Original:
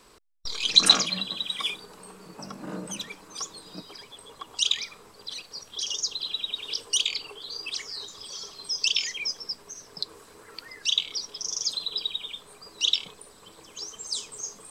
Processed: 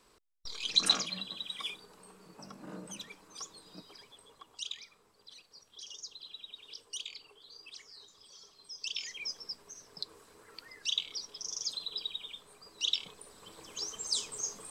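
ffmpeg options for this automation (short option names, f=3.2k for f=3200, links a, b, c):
-af "volume=6dB,afade=t=out:st=4.03:d=0.64:silence=0.446684,afade=t=in:st=8.77:d=0.56:silence=0.375837,afade=t=in:st=12.88:d=0.85:silence=0.446684"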